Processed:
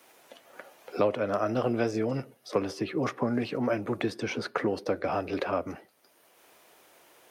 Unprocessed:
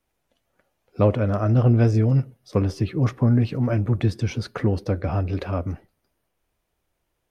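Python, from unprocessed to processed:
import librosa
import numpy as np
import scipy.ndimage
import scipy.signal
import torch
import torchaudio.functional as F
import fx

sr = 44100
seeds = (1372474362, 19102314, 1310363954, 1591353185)

y = scipy.signal.sosfilt(scipy.signal.butter(2, 370.0, 'highpass', fs=sr, output='sos'), x)
y = fx.band_squash(y, sr, depth_pct=70)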